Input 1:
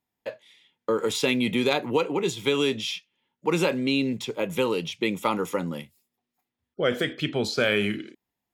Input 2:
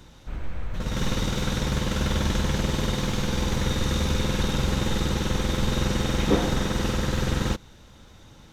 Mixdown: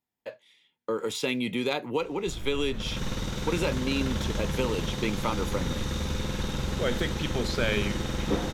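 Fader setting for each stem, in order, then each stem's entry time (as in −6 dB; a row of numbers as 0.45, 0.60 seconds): −5.0, −6.0 decibels; 0.00, 2.00 seconds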